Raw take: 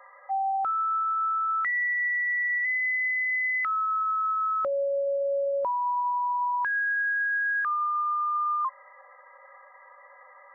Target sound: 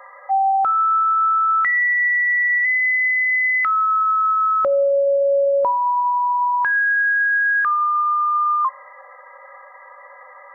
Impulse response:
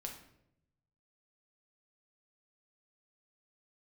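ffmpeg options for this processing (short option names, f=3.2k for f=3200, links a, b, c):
-filter_complex "[0:a]asplit=2[a][b];[b]lowpass=1.3k[c];[1:a]atrim=start_sample=2205[d];[c][d]afir=irnorm=-1:irlink=0,volume=-13dB[e];[a][e]amix=inputs=2:normalize=0,volume=9dB"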